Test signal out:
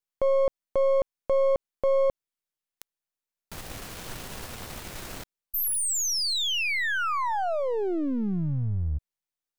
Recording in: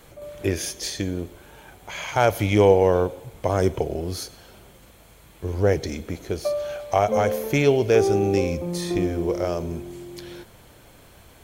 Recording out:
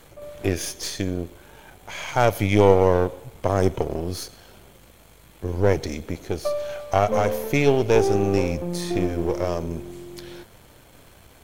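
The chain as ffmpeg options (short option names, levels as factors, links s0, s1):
-af "aeval=exprs='if(lt(val(0),0),0.447*val(0),val(0))':c=same,volume=1.26"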